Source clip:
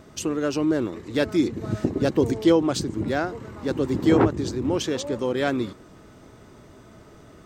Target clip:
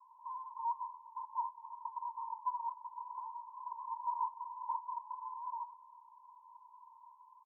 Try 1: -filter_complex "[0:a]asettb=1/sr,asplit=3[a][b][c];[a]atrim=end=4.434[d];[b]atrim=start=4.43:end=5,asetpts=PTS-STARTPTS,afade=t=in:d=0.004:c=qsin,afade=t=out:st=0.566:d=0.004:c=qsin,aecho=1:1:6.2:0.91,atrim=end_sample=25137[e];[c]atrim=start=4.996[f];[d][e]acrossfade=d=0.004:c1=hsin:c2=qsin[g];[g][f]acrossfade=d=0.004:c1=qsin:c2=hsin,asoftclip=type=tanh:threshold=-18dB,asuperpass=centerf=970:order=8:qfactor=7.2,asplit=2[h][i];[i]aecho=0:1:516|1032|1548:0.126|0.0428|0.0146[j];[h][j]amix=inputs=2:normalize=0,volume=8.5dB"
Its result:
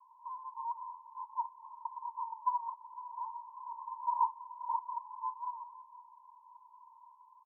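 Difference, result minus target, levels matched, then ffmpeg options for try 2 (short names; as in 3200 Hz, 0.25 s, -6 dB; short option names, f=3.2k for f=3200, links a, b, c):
echo-to-direct +8.5 dB; soft clip: distortion -6 dB
-filter_complex "[0:a]asettb=1/sr,asplit=3[a][b][c];[a]atrim=end=4.434[d];[b]atrim=start=4.43:end=5,asetpts=PTS-STARTPTS,afade=t=in:d=0.004:c=qsin,afade=t=out:st=0.566:d=0.004:c=qsin,aecho=1:1:6.2:0.91,atrim=end_sample=25137[e];[c]atrim=start=4.996[f];[d][e]acrossfade=d=0.004:c1=hsin:c2=qsin[g];[g][f]acrossfade=d=0.004:c1=qsin:c2=hsin,asoftclip=type=tanh:threshold=-27.5dB,asuperpass=centerf=970:order=8:qfactor=7.2,asplit=2[h][i];[i]aecho=0:1:516|1032:0.0473|0.0161[j];[h][j]amix=inputs=2:normalize=0,volume=8.5dB"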